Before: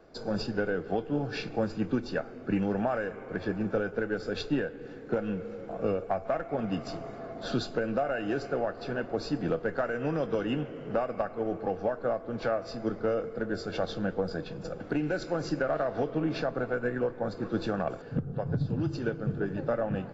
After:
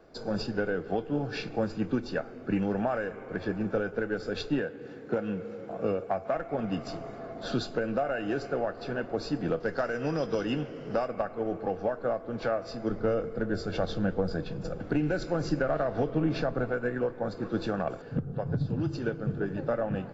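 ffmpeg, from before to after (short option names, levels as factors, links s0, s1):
-filter_complex "[0:a]asettb=1/sr,asplit=3[s0][s1][s2];[s0]atrim=end=4.594[s3];[s1]atrim=start=4.59:end=6.36,asetpts=PTS-STARTPTS,afade=t=in:d=0.004:c=qsin,afade=t=out:st=1.766:d=0.004:c=qsin,highpass=81[s4];[s2]atrim=start=6.356[s5];[s3][s4]acrossfade=d=0.004:c1=hsin:c2=qsin[s6];[s6][s5]acrossfade=d=0.004:c1=qsin:c2=hsin,asettb=1/sr,asplit=3[s7][s8][s9];[s7]atrim=end=9.604[s10];[s8]atrim=start=9.6:end=11.08,asetpts=PTS-STARTPTS,afade=t=in:d=0.004:c=qsin,afade=t=out:st=1.476:d=0.004:c=qsin,equalizer=f=5200:w=2.1:g=13.5[s11];[s9]atrim=start=11.076[s12];[s10][s11]acrossfade=d=0.004:c1=hsin:c2=qsin[s13];[s13][s12]acrossfade=d=0.004:c1=qsin:c2=hsin,asettb=1/sr,asplit=3[s14][s15][s16];[s14]atrim=end=12.904[s17];[s15]atrim=start=12.9:end=16.72,asetpts=PTS-STARTPTS,afade=t=in:d=0.004:c=qsin,afade=t=out:st=3.816:d=0.004:c=qsin,lowshelf=f=160:g=8.5[s18];[s16]atrim=start=16.716[s19];[s17][s18]acrossfade=d=0.004:c1=hsin:c2=qsin[s20];[s20][s19]acrossfade=d=0.004:c1=qsin:c2=hsin"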